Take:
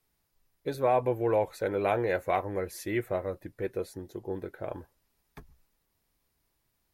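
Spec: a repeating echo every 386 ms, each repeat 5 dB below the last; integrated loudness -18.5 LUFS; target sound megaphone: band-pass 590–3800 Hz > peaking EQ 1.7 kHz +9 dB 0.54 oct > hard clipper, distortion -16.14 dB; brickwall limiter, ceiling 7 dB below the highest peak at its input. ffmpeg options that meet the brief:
-af "alimiter=limit=0.0794:level=0:latency=1,highpass=590,lowpass=3800,equalizer=f=1700:t=o:w=0.54:g=9,aecho=1:1:386|772|1158|1544|1930|2316|2702:0.562|0.315|0.176|0.0988|0.0553|0.031|0.0173,asoftclip=type=hard:threshold=0.0422,volume=7.94"

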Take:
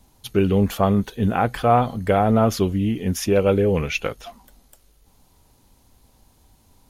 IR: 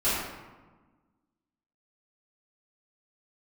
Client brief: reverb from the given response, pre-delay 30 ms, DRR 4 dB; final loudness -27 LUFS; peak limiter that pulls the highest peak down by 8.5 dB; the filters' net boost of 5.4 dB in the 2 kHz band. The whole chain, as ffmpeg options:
-filter_complex "[0:a]equalizer=f=2000:t=o:g=7.5,alimiter=limit=0.266:level=0:latency=1,asplit=2[s0][s1];[1:a]atrim=start_sample=2205,adelay=30[s2];[s1][s2]afir=irnorm=-1:irlink=0,volume=0.141[s3];[s0][s3]amix=inputs=2:normalize=0,volume=0.473"

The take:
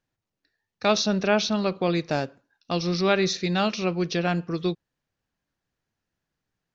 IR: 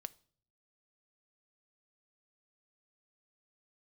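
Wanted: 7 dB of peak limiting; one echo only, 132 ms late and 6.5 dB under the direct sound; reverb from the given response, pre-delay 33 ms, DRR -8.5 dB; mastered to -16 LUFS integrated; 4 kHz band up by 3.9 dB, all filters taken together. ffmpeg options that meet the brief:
-filter_complex "[0:a]equalizer=f=4000:t=o:g=4.5,alimiter=limit=0.2:level=0:latency=1,aecho=1:1:132:0.473,asplit=2[s0][s1];[1:a]atrim=start_sample=2205,adelay=33[s2];[s1][s2]afir=irnorm=-1:irlink=0,volume=4.22[s3];[s0][s3]amix=inputs=2:normalize=0,volume=0.944"

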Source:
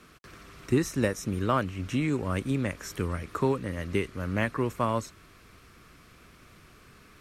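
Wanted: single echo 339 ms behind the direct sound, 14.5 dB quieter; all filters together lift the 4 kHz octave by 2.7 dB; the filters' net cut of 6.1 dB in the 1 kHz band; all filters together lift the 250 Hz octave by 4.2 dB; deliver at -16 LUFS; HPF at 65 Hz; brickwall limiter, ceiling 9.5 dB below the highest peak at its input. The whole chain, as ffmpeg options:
-af "highpass=65,equalizer=f=250:t=o:g=5.5,equalizer=f=1000:t=o:g=-8,equalizer=f=4000:t=o:g=4.5,alimiter=limit=0.112:level=0:latency=1,aecho=1:1:339:0.188,volume=5.31"

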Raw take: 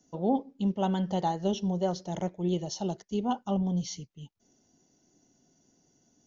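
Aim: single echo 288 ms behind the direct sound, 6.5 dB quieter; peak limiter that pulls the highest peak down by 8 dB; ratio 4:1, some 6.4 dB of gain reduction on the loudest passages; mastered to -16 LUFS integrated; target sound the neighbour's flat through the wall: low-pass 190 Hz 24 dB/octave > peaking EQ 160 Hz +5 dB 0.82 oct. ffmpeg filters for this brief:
-af "acompressor=threshold=0.0316:ratio=4,alimiter=level_in=1.88:limit=0.0631:level=0:latency=1,volume=0.531,lowpass=f=190:w=0.5412,lowpass=f=190:w=1.3066,equalizer=f=160:t=o:w=0.82:g=5,aecho=1:1:288:0.473,volume=14.1"

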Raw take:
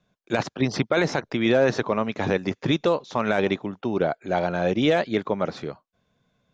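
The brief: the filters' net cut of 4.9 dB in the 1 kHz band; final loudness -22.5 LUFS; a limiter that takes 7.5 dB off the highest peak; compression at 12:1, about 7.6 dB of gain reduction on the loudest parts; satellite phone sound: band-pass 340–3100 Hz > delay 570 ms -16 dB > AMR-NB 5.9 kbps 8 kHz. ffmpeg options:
-af "equalizer=f=1000:t=o:g=-7,acompressor=threshold=0.0631:ratio=12,alimiter=limit=0.0794:level=0:latency=1,highpass=340,lowpass=3100,aecho=1:1:570:0.158,volume=5.62" -ar 8000 -c:a libopencore_amrnb -b:a 5900

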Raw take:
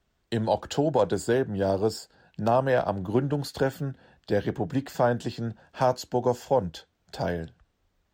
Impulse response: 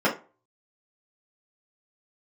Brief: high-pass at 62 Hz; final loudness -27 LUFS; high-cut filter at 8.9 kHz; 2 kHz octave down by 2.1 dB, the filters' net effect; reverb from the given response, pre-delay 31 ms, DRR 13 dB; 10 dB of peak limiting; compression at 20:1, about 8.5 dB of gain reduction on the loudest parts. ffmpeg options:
-filter_complex "[0:a]highpass=62,lowpass=8900,equalizer=f=2000:t=o:g=-3,acompressor=threshold=0.0501:ratio=20,alimiter=level_in=1.12:limit=0.0631:level=0:latency=1,volume=0.891,asplit=2[s0][s1];[1:a]atrim=start_sample=2205,adelay=31[s2];[s1][s2]afir=irnorm=-1:irlink=0,volume=0.0355[s3];[s0][s3]amix=inputs=2:normalize=0,volume=2.82"

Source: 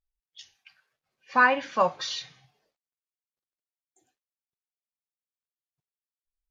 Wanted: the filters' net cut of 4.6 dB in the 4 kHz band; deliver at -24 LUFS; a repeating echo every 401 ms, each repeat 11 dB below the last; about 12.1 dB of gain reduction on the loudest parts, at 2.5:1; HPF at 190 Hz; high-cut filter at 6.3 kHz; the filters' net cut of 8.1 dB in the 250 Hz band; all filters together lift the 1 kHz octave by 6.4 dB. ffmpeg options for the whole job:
-af "highpass=190,lowpass=6300,equalizer=f=250:t=o:g=-8,equalizer=f=1000:t=o:g=8,equalizer=f=4000:t=o:g=-5.5,acompressor=threshold=0.0355:ratio=2.5,aecho=1:1:401|802|1203:0.282|0.0789|0.0221,volume=2.24"

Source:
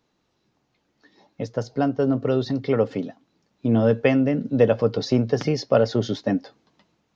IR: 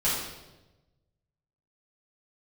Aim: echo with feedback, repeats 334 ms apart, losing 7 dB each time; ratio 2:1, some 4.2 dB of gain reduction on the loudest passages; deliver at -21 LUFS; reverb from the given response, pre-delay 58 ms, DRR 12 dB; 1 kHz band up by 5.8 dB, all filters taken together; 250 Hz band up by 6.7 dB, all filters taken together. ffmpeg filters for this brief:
-filter_complex "[0:a]equalizer=f=250:t=o:g=7,equalizer=f=1000:t=o:g=8.5,acompressor=threshold=0.158:ratio=2,aecho=1:1:334|668|1002|1336|1670:0.447|0.201|0.0905|0.0407|0.0183,asplit=2[s0][s1];[1:a]atrim=start_sample=2205,adelay=58[s2];[s1][s2]afir=irnorm=-1:irlink=0,volume=0.0708[s3];[s0][s3]amix=inputs=2:normalize=0,volume=0.891"

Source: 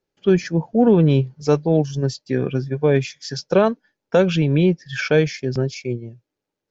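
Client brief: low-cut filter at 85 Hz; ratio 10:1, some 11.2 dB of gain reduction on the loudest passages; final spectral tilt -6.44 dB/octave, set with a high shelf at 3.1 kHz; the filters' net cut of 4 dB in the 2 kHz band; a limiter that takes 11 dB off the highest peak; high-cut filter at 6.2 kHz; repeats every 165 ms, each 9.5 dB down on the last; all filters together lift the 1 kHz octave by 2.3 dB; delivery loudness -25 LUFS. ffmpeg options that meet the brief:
-af "highpass=85,lowpass=6200,equalizer=f=1000:t=o:g=5,equalizer=f=2000:t=o:g=-5.5,highshelf=f=3100:g=-5.5,acompressor=threshold=0.0891:ratio=10,alimiter=limit=0.106:level=0:latency=1,aecho=1:1:165|330|495|660:0.335|0.111|0.0365|0.012,volume=1.88"

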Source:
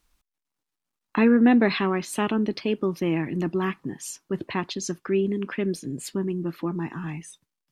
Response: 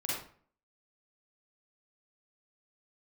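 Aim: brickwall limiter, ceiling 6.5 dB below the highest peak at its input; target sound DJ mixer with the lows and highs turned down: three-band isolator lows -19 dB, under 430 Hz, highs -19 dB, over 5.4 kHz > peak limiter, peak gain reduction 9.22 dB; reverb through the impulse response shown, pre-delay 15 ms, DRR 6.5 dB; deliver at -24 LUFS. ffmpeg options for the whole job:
-filter_complex "[0:a]alimiter=limit=0.188:level=0:latency=1,asplit=2[s0][s1];[1:a]atrim=start_sample=2205,adelay=15[s2];[s1][s2]afir=irnorm=-1:irlink=0,volume=0.282[s3];[s0][s3]amix=inputs=2:normalize=0,acrossover=split=430 5400:gain=0.112 1 0.112[s4][s5][s6];[s4][s5][s6]amix=inputs=3:normalize=0,volume=3.98,alimiter=limit=0.224:level=0:latency=1"

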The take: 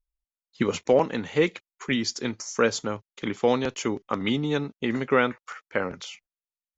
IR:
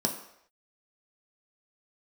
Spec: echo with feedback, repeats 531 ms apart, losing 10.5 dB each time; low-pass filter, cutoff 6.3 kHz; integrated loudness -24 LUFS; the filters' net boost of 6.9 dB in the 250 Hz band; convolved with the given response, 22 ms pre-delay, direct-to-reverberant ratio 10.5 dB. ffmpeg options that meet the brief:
-filter_complex "[0:a]lowpass=6300,equalizer=f=250:t=o:g=8,aecho=1:1:531|1062|1593:0.299|0.0896|0.0269,asplit=2[s0][s1];[1:a]atrim=start_sample=2205,adelay=22[s2];[s1][s2]afir=irnorm=-1:irlink=0,volume=0.133[s3];[s0][s3]amix=inputs=2:normalize=0,volume=0.75"

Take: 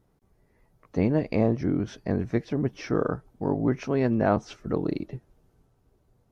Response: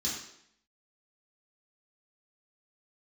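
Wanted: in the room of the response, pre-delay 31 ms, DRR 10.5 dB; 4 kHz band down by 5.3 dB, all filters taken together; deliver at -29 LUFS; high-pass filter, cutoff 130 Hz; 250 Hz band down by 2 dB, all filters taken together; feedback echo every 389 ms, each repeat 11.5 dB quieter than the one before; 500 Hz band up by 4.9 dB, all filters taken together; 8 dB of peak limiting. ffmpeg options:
-filter_complex "[0:a]highpass=130,equalizer=f=250:t=o:g=-4.5,equalizer=f=500:t=o:g=7.5,equalizer=f=4000:t=o:g=-7.5,alimiter=limit=0.2:level=0:latency=1,aecho=1:1:389|778|1167:0.266|0.0718|0.0194,asplit=2[s0][s1];[1:a]atrim=start_sample=2205,adelay=31[s2];[s1][s2]afir=irnorm=-1:irlink=0,volume=0.188[s3];[s0][s3]amix=inputs=2:normalize=0,volume=0.794"

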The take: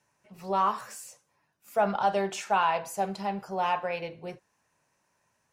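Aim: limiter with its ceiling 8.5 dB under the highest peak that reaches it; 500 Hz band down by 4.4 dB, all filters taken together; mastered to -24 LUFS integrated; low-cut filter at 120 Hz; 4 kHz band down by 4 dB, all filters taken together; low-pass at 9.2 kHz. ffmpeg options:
-af "highpass=120,lowpass=9200,equalizer=f=500:t=o:g=-6,equalizer=f=4000:t=o:g=-6,volume=3.76,alimiter=limit=0.237:level=0:latency=1"

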